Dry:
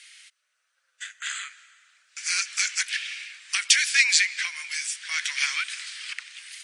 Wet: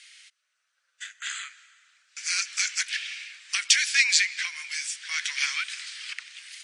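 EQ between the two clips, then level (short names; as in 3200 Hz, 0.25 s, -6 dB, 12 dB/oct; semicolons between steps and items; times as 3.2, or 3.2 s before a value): BPF 540–7200 Hz; high shelf 5100 Hz +5.5 dB; -2.5 dB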